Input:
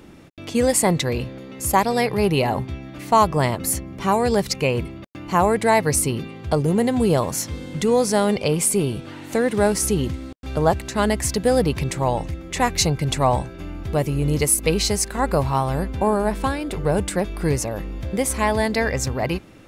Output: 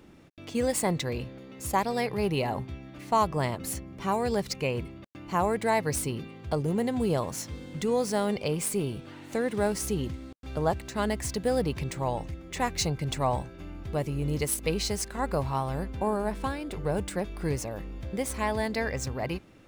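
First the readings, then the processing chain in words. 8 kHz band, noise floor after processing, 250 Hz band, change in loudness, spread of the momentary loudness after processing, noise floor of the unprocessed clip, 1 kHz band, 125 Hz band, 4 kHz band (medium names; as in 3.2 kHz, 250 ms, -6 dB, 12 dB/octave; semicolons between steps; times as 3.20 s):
-11.0 dB, -46 dBFS, -8.5 dB, -9.0 dB, 10 LU, -38 dBFS, -8.5 dB, -8.5 dB, -9.0 dB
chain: median filter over 3 samples; trim -8.5 dB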